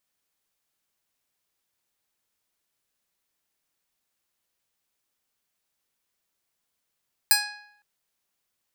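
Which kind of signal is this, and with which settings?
Karplus-Strong string G#5, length 0.51 s, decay 0.74 s, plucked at 0.24, bright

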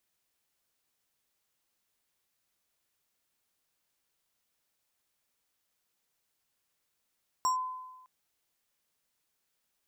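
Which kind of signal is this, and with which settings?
two-operator FM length 0.61 s, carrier 1,020 Hz, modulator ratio 6.46, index 0.58, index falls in 0.12 s linear, decay 1.15 s, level −23 dB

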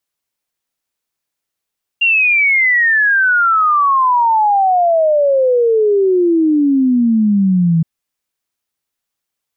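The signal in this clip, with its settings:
exponential sine sweep 2,800 Hz → 160 Hz 5.82 s −9 dBFS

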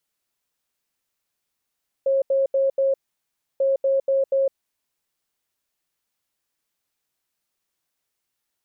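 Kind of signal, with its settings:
beeps in groups sine 542 Hz, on 0.16 s, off 0.08 s, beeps 4, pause 0.66 s, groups 2, −16.5 dBFS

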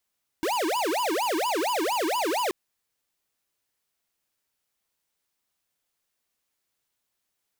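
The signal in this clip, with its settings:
siren wail 308–1,000 Hz 4.3 per second square −26 dBFS 2.08 s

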